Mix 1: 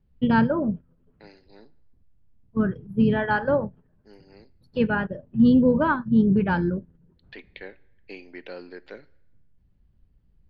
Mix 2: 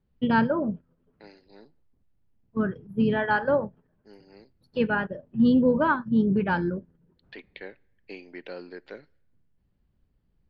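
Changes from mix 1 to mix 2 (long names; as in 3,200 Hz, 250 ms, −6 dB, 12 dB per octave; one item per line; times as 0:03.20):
first voice: add low-shelf EQ 160 Hz −10 dB
second voice: send −7.5 dB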